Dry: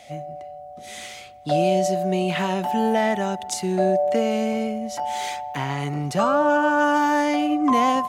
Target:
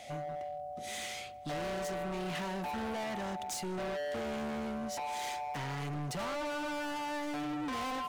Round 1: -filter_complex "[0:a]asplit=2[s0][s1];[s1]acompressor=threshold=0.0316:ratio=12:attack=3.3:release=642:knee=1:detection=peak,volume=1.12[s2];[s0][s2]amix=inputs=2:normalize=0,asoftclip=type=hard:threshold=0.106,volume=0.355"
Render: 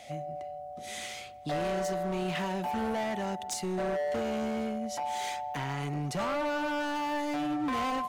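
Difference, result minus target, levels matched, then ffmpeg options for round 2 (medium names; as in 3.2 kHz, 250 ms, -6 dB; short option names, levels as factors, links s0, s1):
hard clipper: distortion -4 dB
-filter_complex "[0:a]asplit=2[s0][s1];[s1]acompressor=threshold=0.0316:ratio=12:attack=3.3:release=642:knee=1:detection=peak,volume=1.12[s2];[s0][s2]amix=inputs=2:normalize=0,asoftclip=type=hard:threshold=0.0473,volume=0.355"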